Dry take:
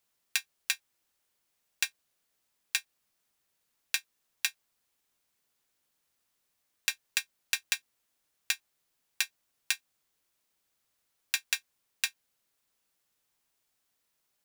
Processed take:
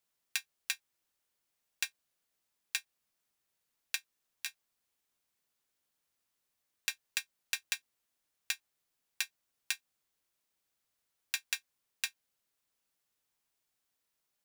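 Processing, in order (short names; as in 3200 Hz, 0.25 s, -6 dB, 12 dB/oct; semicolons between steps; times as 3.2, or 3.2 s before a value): 3.95–4.46 compressor, threshold -32 dBFS, peak gain reduction 8.5 dB; gain -5 dB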